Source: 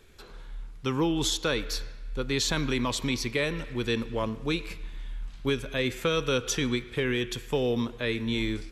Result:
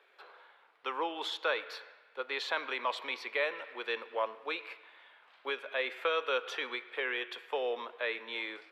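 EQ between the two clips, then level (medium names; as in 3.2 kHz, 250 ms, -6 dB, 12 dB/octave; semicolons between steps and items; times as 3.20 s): high-pass 570 Hz 24 dB/octave; distance through air 450 m; treble shelf 8.5 kHz +9 dB; +2.5 dB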